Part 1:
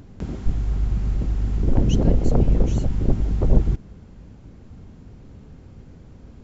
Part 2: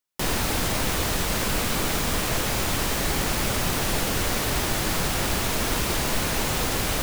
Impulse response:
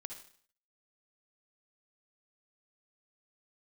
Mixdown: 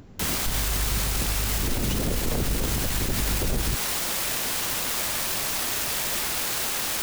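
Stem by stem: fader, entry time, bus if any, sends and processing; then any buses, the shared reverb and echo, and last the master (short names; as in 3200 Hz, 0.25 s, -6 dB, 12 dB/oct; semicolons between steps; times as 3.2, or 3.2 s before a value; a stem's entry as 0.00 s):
+1.0 dB, 0.00 s, no send, dry
-0.5 dB, 0.00 s, no send, wrapped overs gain 21.5 dB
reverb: off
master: low shelf 270 Hz -6 dB; limiter -16.5 dBFS, peak gain reduction 11 dB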